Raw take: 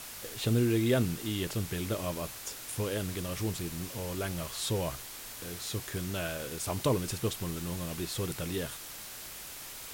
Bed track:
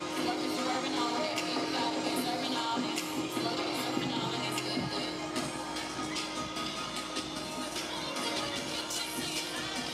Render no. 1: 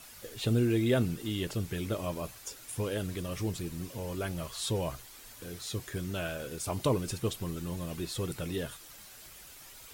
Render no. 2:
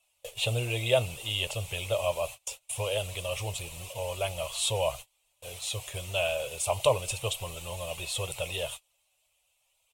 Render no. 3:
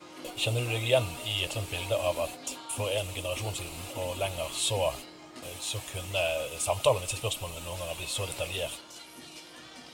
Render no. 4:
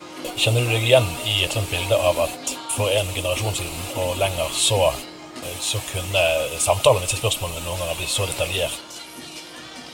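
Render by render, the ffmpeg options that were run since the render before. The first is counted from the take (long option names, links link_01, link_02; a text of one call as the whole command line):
ffmpeg -i in.wav -af "afftdn=noise_reduction=9:noise_floor=-45" out.wav
ffmpeg -i in.wav -af "agate=range=-28dB:threshold=-44dB:ratio=16:detection=peak,firequalizer=gain_entry='entry(110,0);entry(190,-17);entry(290,-19);entry(560,10);entry(980,6);entry(1600,-9);entry(2600,14);entry(4800,0);entry(8100,9);entry(15000,-1)':delay=0.05:min_phase=1" out.wav
ffmpeg -i in.wav -i bed.wav -filter_complex "[1:a]volume=-12dB[link_01];[0:a][link_01]amix=inputs=2:normalize=0" out.wav
ffmpeg -i in.wav -af "volume=10dB,alimiter=limit=-2dB:level=0:latency=1" out.wav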